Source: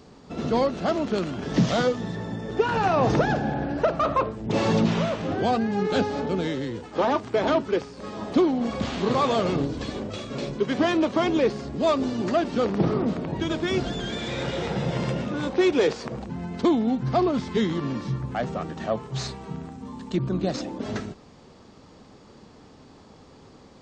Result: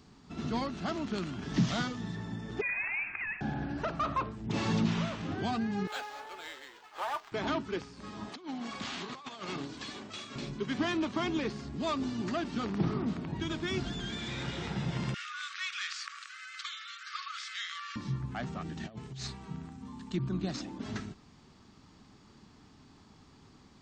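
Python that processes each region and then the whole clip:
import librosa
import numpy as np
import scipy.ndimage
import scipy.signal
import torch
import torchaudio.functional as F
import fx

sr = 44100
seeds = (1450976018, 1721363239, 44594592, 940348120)

y = fx.chain(x, sr, fx.ellip_highpass(hz=910.0, order=4, stop_db=50),
    fx.freq_invert(carrier_hz=3400), at=(2.61, 3.41))
y = fx.chain(y, sr, fx.cvsd(bps=64000),
    fx.highpass(hz=570.0, slope=24),
    fx.resample_linear(factor=4), at=(5.87, 7.32))
y = fx.chain(y, sr, fx.highpass(hz=630.0, slope=6),
    fx.over_compress(threshold_db=-30.0, ratio=-0.5), at=(8.29, 10.36))
y = fx.chain(y, sr, fx.brickwall_highpass(low_hz=1100.0),
    fx.env_flatten(amount_pct=50), at=(15.14, 17.96))
y = fx.chain(y, sr, fx.peak_eq(hz=1100.0, db=-9.0, octaves=0.83),
    fx.over_compress(threshold_db=-34.0, ratio=-1.0), at=(18.62, 19.25))
y = fx.peak_eq(y, sr, hz=540.0, db=-11.0, octaves=1.0)
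y = fx.notch(y, sr, hz=500.0, q=12.0)
y = y * librosa.db_to_amplitude(-5.5)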